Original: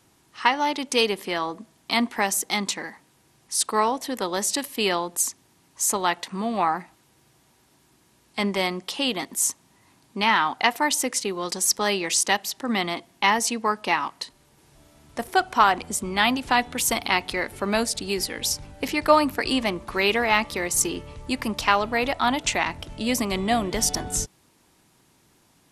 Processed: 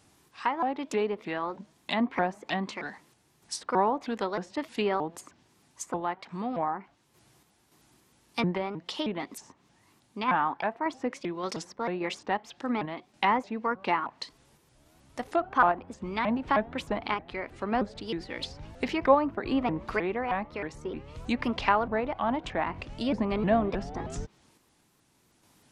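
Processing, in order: treble ducked by the level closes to 1300 Hz, closed at -20.5 dBFS; random-step tremolo; shaped vibrato saw up 3.2 Hz, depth 250 cents; gain -1 dB

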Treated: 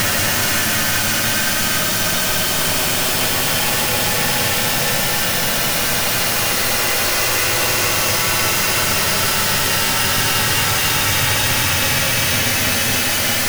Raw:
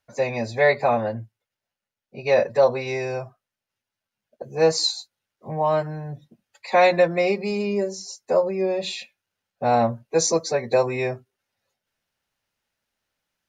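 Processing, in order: infinite clipping; Paulstretch 44×, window 0.10 s, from 3.52; gain +9 dB

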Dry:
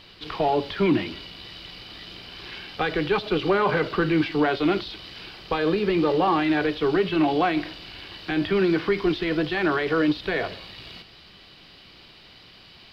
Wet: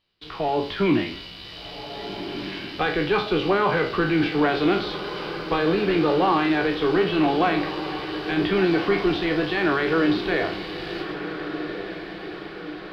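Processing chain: spectral trails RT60 0.38 s; gate with hold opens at -34 dBFS; AGC gain up to 6.5 dB; diffused feedback echo 1.523 s, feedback 57%, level -10 dB; gain -6 dB

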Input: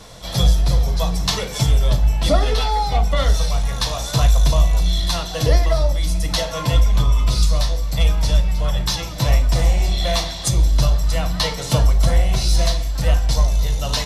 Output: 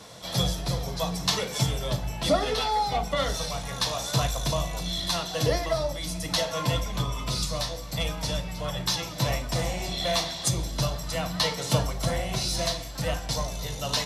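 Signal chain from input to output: HPF 120 Hz 12 dB/oct; gain -4 dB

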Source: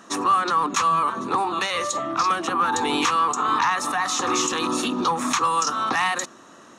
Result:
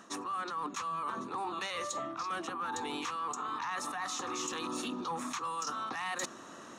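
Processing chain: reverse; compressor 20:1, threshold -32 dBFS, peak gain reduction 17.5 dB; reverse; hard clip -26 dBFS, distortion -35 dB; gain -1.5 dB

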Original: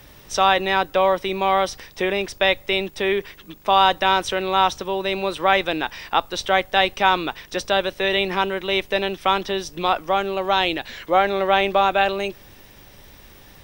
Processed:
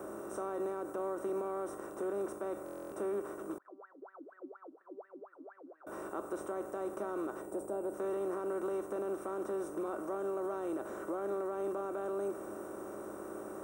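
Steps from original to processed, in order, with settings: per-bin compression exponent 0.4; HPF 76 Hz; notch 3400 Hz, Q 17; 7.41–7.93 spectral gain 980–7000 Hz -9 dB; EQ curve 120 Hz 0 dB, 180 Hz -7 dB, 330 Hz +9 dB, 880 Hz -10 dB, 1300 Hz -2 dB, 2000 Hz -25 dB, 2900 Hz -29 dB, 4600 Hz -30 dB, 8300 Hz +1 dB; limiter -11.5 dBFS, peak gain reduction 8 dB; resonator 210 Hz, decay 0.3 s, harmonics odd, mix 80%; 3.58–5.87 wah 4.2 Hz 260–1900 Hz, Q 18; stuck buffer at 2.64, samples 1024, times 11; gain -5 dB

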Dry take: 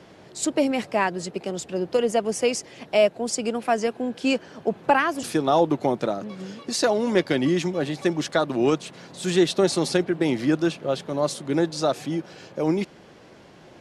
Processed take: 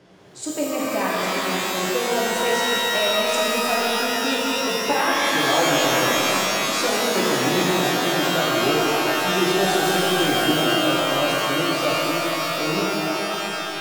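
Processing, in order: shimmer reverb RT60 3.8 s, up +12 st, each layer -2 dB, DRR -5.5 dB; gain -6.5 dB

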